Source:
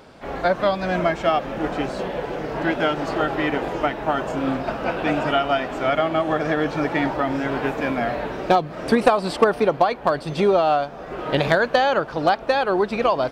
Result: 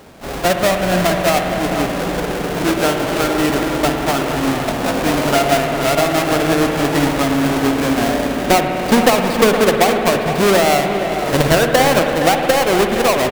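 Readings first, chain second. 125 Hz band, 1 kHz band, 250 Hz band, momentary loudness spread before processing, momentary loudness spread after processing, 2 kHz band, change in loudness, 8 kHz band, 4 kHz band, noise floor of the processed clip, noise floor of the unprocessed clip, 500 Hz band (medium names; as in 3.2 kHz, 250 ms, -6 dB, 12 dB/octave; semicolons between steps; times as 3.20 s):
+8.5 dB, +4.5 dB, +8.0 dB, 7 LU, 6 LU, +6.0 dB, +6.0 dB, no reading, +10.0 dB, -22 dBFS, -36 dBFS, +5.5 dB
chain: square wave that keeps the level; echo from a far wall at 80 m, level -9 dB; spring tank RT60 3.5 s, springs 55 ms, chirp 75 ms, DRR 4 dB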